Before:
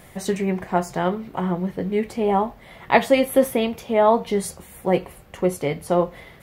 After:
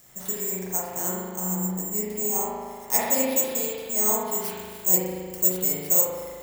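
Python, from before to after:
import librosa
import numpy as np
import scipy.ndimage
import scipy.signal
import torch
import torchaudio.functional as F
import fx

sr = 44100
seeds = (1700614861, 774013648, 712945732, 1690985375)

y = (np.kron(x[::6], np.eye(6)[0]) * 6)[:len(x)]
y = fx.high_shelf(y, sr, hz=5900.0, db=fx.steps((0.0, 3.5), (4.43, 11.0)))
y = fx.rev_spring(y, sr, rt60_s=1.9, pass_ms=(38,), chirp_ms=30, drr_db=-7.0)
y = y * librosa.db_to_amplitude(-17.5)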